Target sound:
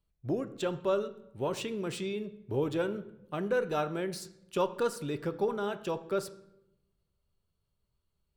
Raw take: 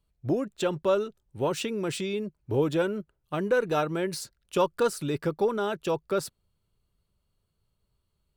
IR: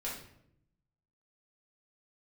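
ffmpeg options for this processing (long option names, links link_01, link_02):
-filter_complex "[0:a]asplit=2[link_01][link_02];[1:a]atrim=start_sample=2205,asetrate=35280,aresample=44100,lowpass=6300[link_03];[link_02][link_03]afir=irnorm=-1:irlink=0,volume=-12.5dB[link_04];[link_01][link_04]amix=inputs=2:normalize=0,volume=-6.5dB"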